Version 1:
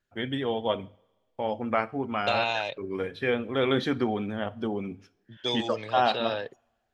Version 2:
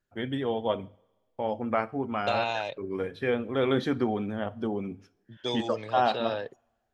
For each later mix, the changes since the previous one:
master: add peaking EQ 3 kHz -5 dB 1.9 oct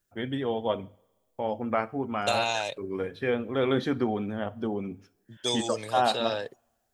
second voice: remove distance through air 220 m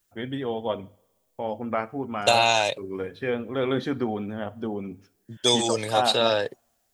second voice +8.0 dB

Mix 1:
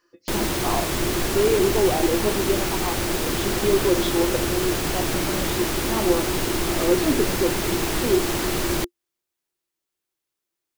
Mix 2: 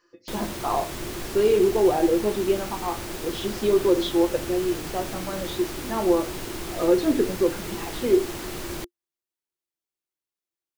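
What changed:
speech: send +9.0 dB; background -9.5 dB

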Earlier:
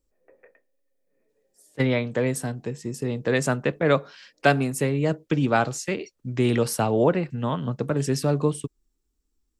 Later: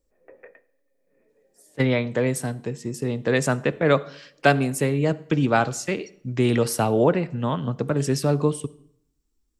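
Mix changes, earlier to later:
background +6.0 dB; reverb: on, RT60 0.70 s

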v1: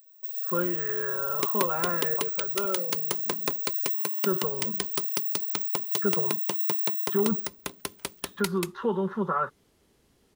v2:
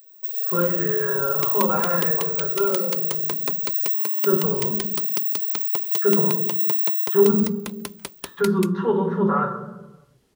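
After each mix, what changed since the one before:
first sound +4.5 dB; reverb: on, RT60 1.1 s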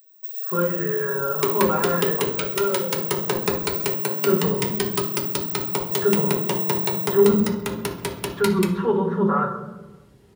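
first sound -4.5 dB; second sound: send on

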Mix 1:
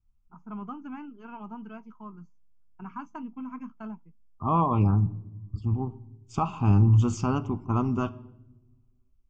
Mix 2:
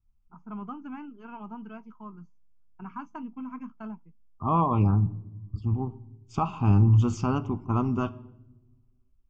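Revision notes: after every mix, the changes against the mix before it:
master: add low-pass 6.2 kHz 12 dB/octave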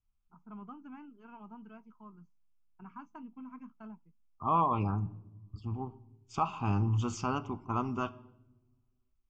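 first voice -9.0 dB; second voice: add bass shelf 440 Hz -11.5 dB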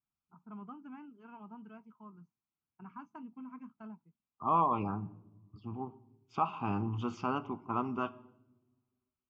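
second voice: add band-pass 170–3600 Hz; master: add distance through air 65 m

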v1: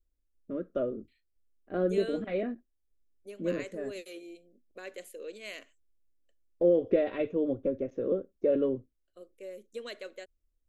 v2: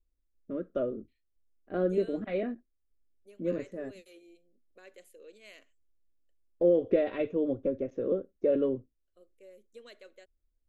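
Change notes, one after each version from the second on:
second voice -10.0 dB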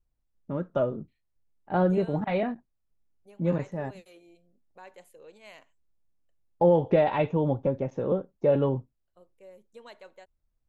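first voice: add treble shelf 2.3 kHz +10.5 dB; master: remove static phaser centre 360 Hz, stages 4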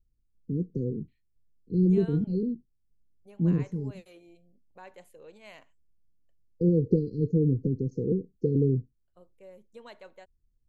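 first voice: add brick-wall FIR band-stop 500–4100 Hz; master: add tone controls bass +5 dB, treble -2 dB

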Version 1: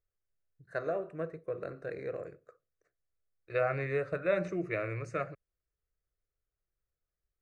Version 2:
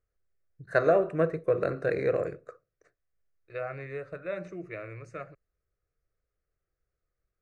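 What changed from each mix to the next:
first voice +11.5 dB; second voice -5.5 dB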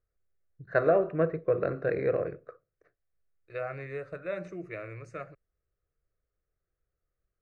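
first voice: add distance through air 280 m

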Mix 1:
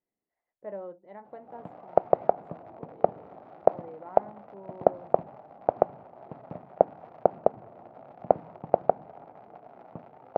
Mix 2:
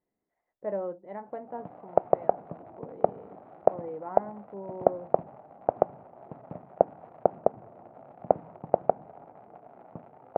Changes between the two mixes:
speech +7.5 dB; master: add distance through air 370 m

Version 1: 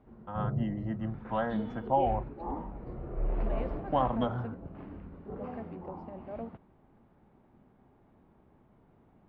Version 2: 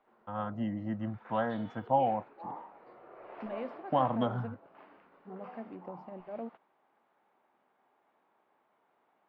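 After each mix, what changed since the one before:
background: add high-pass 770 Hz 12 dB/octave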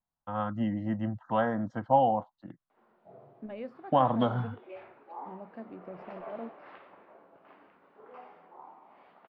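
first voice +4.0 dB; background: entry +2.70 s

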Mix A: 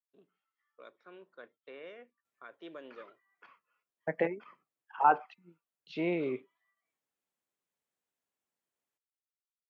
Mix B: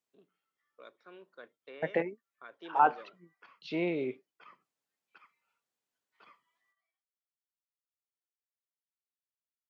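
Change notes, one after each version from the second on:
second voice: entry -2.25 s; master: add peaking EQ 4.8 kHz +5.5 dB 0.91 oct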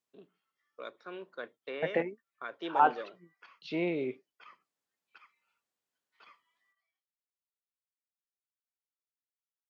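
first voice +9.0 dB; background: add tilt EQ +2.5 dB/octave

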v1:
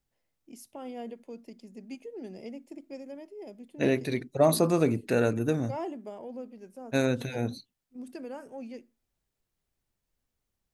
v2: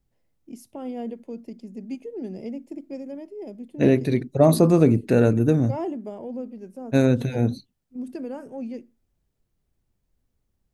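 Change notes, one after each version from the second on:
master: add bass shelf 500 Hz +11.5 dB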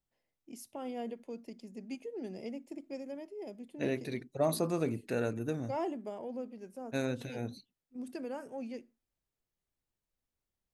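second voice -8.0 dB; master: add bass shelf 500 Hz -11.5 dB

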